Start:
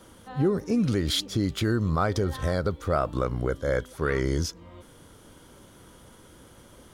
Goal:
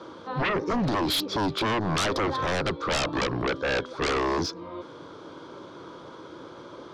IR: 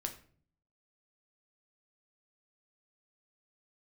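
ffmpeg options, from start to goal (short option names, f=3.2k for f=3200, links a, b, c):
-af "highpass=210,equalizer=f=220:t=q:w=4:g=-9,equalizer=f=340:t=q:w=4:g=4,equalizer=f=1.1k:t=q:w=4:g=4,equalizer=f=1.9k:t=q:w=4:g=-10,equalizer=f=2.9k:t=q:w=4:g=-10,lowpass=f=4.3k:w=0.5412,lowpass=f=4.3k:w=1.3066,bandreject=f=750:w=12,aeval=exprs='0.224*sin(PI/2*6.31*val(0)/0.224)':c=same,volume=-9dB"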